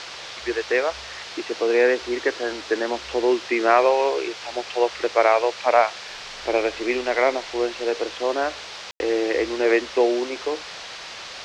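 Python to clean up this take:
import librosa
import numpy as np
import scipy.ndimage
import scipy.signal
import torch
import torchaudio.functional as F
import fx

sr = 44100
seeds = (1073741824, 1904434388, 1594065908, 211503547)

y = fx.fix_ambience(x, sr, seeds[0], print_start_s=10.86, print_end_s=11.36, start_s=8.91, end_s=9.0)
y = fx.noise_reduce(y, sr, print_start_s=10.86, print_end_s=11.36, reduce_db=29.0)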